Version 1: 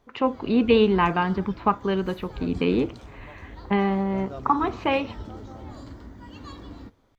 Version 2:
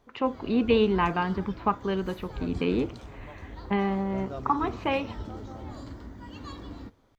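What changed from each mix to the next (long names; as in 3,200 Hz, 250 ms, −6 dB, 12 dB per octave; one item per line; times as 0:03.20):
first voice −4.0 dB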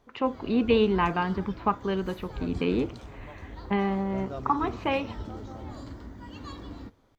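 second voice: send on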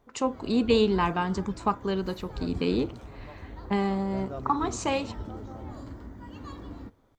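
first voice: remove low-pass filter 2,700 Hz 24 dB per octave
master: add parametric band 4,100 Hz −6.5 dB 1.7 octaves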